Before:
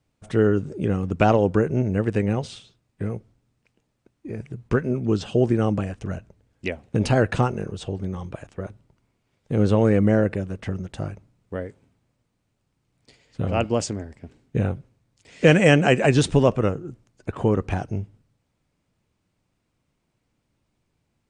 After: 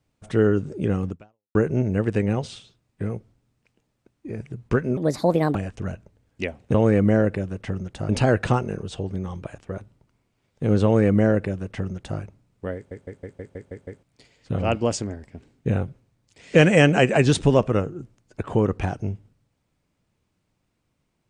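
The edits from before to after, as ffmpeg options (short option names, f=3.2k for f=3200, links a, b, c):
-filter_complex "[0:a]asplit=14[a][b][c][d][e][f][g][h][i][j][k][l][m][n];[a]atrim=end=1.55,asetpts=PTS-STARTPTS,afade=t=out:st=1.09:d=0.46:c=exp[o];[b]atrim=start=1.55:end=4.974,asetpts=PTS-STARTPTS,afade=t=in:d=0.004:c=hsin[p];[c]atrim=start=4.97:end=5.79,asetpts=PTS-STARTPTS,asetrate=62181,aresample=44100[q];[d]atrim=start=5.786:end=6.982[r];[e]atrim=start=9.728:end=11.082[s];[f]atrim=start=6.978:end=11.802[t];[g]atrim=start=11.638:end=11.802[u];[h]atrim=start=11.638:end=11.802[v];[i]atrim=start=11.638:end=11.802[w];[j]atrim=start=11.638:end=11.802[x];[k]atrim=start=11.638:end=11.802[y];[l]atrim=start=11.638:end=11.802[z];[m]atrim=start=11.638:end=11.802[aa];[n]atrim=start=12.918[ab];[o][p]concat=n=2:v=0:a=1[ac];[ac][q]acrossfade=d=0.004:c1=hsin:c2=hsin[ad];[ad][r]acrossfade=d=0.004:c1=hsin:c2=hsin[ae];[ae][s]acrossfade=d=0.004:c1=hsin:c2=hsin[af];[af][t]acrossfade=d=0.004:c1=hsin:c2=hsin[ag];[ag][u]acrossfade=d=0.004:c1=hsin:c2=hsin[ah];[ah][v]acrossfade=d=0.004:c1=hsin:c2=hsin[ai];[ai][w]acrossfade=d=0.004:c1=hsin:c2=hsin[aj];[aj][x]acrossfade=d=0.004:c1=hsin:c2=hsin[ak];[ak][y]acrossfade=d=0.004:c1=hsin:c2=hsin[al];[al][z]acrossfade=d=0.004:c1=hsin:c2=hsin[am];[am][aa]acrossfade=d=0.004:c1=hsin:c2=hsin[an];[an][ab]acrossfade=d=0.004:c1=hsin:c2=hsin"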